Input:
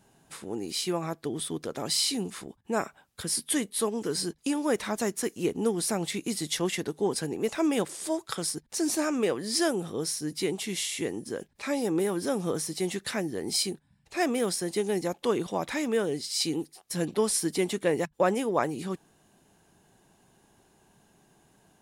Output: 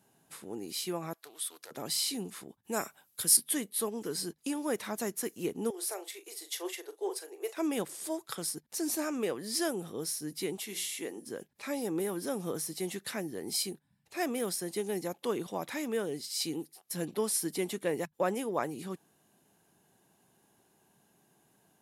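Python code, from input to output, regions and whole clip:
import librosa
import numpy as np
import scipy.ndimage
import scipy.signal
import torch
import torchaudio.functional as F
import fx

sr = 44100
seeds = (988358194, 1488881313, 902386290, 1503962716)

y = fx.chain(x, sr, fx.highpass(hz=980.0, slope=12),
    fx.high_shelf(hz=5500.0, db=4.0),
    fx.doppler_dist(depth_ms=0.2), at=(1.13, 1.71))
y = fx.chain(y, sr, fx.highpass(hz=45.0, slope=12),
    fx.high_shelf(hz=3800.0, db=12.0), at=(2.63, 3.37))
y = fx.chain(y, sr, fx.cheby1_highpass(hz=360.0, order=5),
    fx.doubler(ms=40.0, db=-9),
    fx.upward_expand(threshold_db=-38.0, expansion=1.5), at=(5.7, 7.57))
y = fx.chain(y, sr, fx.highpass(hz=260.0, slope=12),
    fx.hum_notches(base_hz=60, count=9), at=(10.57, 11.25))
y = scipy.signal.sosfilt(scipy.signal.butter(2, 110.0, 'highpass', fs=sr, output='sos'), y)
y = fx.peak_eq(y, sr, hz=12000.0, db=13.0, octaves=0.27)
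y = y * librosa.db_to_amplitude(-6.0)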